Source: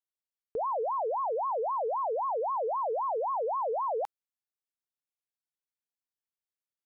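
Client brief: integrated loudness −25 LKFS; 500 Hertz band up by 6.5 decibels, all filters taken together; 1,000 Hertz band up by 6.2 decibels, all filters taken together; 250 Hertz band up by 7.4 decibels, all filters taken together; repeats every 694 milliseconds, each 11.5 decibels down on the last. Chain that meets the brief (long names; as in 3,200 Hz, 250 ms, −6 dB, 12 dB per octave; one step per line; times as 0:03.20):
parametric band 250 Hz +9 dB
parametric band 500 Hz +4 dB
parametric band 1,000 Hz +5.5 dB
repeating echo 694 ms, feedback 27%, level −11.5 dB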